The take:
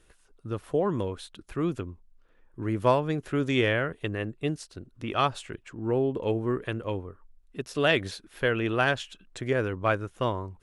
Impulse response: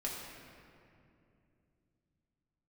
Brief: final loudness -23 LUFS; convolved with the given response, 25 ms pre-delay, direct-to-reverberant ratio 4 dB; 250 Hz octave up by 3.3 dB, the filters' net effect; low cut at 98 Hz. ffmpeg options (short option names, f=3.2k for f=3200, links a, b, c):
-filter_complex "[0:a]highpass=98,equalizer=f=250:t=o:g=4.5,asplit=2[a][b];[1:a]atrim=start_sample=2205,adelay=25[c];[b][c]afir=irnorm=-1:irlink=0,volume=-6dB[d];[a][d]amix=inputs=2:normalize=0,volume=3dB"